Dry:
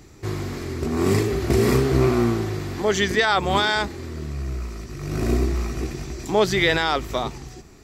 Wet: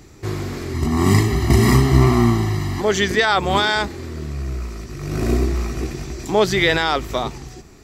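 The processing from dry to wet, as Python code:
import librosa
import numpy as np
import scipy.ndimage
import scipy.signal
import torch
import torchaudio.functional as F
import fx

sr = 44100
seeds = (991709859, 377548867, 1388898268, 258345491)

y = fx.comb(x, sr, ms=1.0, depth=0.92, at=(0.74, 2.81))
y = F.gain(torch.from_numpy(y), 2.5).numpy()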